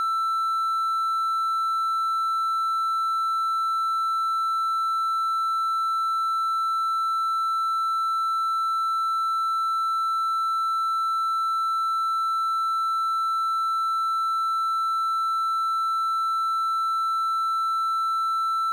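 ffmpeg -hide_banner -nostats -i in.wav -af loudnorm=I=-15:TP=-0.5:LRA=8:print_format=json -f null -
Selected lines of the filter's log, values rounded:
"input_i" : "-23.6",
"input_tp" : "-22.4",
"input_lra" : "0.0",
"input_thresh" : "-33.6",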